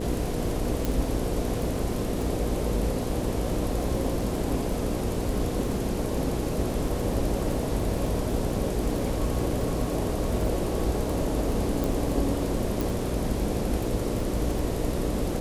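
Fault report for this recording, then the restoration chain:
crackle 22 per s -31 dBFS
hum 60 Hz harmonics 8 -32 dBFS
0.85 s: pop
11.84 s: pop
12.81 s: pop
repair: de-click; de-hum 60 Hz, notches 8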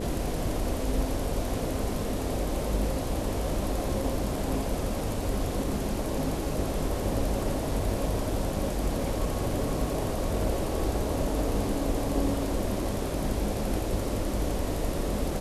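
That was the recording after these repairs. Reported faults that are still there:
0.85 s: pop

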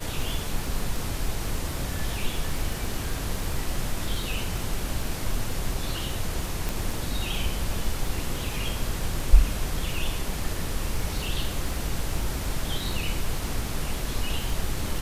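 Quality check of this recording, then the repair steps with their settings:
crackle 30 per s -31 dBFS
6.69 s: pop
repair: de-click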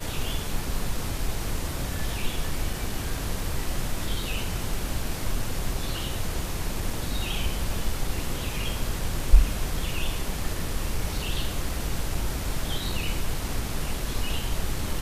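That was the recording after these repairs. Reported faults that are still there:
nothing left

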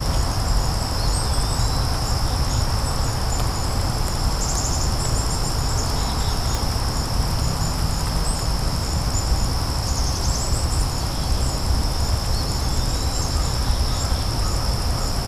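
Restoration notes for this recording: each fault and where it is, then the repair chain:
6.55 s: pop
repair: de-click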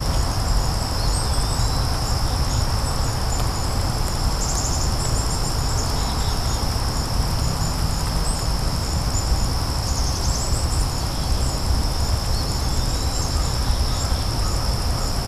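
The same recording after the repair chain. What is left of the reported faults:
6.55 s: pop

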